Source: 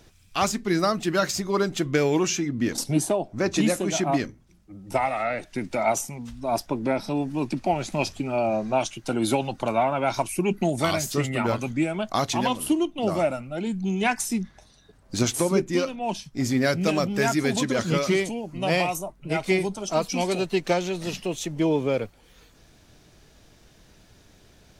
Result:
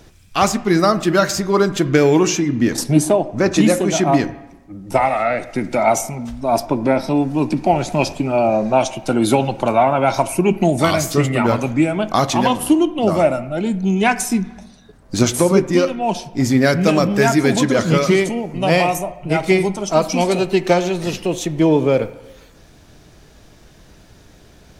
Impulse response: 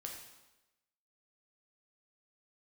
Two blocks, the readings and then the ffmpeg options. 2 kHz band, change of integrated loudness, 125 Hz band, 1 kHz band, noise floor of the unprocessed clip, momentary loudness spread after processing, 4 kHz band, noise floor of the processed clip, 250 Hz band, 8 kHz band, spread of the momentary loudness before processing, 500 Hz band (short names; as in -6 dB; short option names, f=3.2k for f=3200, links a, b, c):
+7.0 dB, +8.5 dB, +9.0 dB, +8.5 dB, -56 dBFS, 7 LU, +5.5 dB, -47 dBFS, +9.0 dB, +6.0 dB, 7 LU, +8.5 dB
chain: -filter_complex "[0:a]asplit=2[a][b];[1:a]atrim=start_sample=2205,lowpass=2.2k[c];[b][c]afir=irnorm=-1:irlink=0,volume=-4dB[d];[a][d]amix=inputs=2:normalize=0,volume=6dB"